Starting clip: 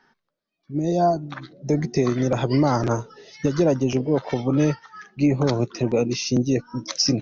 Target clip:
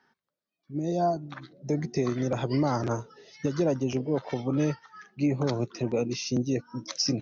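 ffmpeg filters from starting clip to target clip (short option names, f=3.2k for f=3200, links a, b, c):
-af "highpass=52,volume=-6.5dB"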